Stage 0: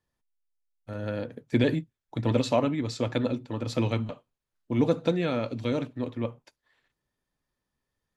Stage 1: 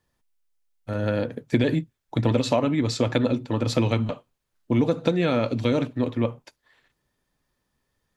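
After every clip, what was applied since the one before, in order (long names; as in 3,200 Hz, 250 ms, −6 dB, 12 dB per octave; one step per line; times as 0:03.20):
downward compressor, threshold −25 dBFS, peak gain reduction 8 dB
level +8 dB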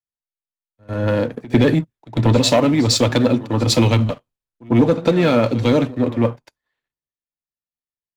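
leveller curve on the samples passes 2
echo ahead of the sound 99 ms −15 dB
multiband upward and downward expander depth 70%
level +1 dB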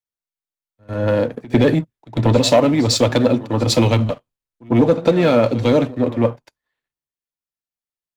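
dynamic equaliser 600 Hz, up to +4 dB, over −28 dBFS, Q 1.3
level −1 dB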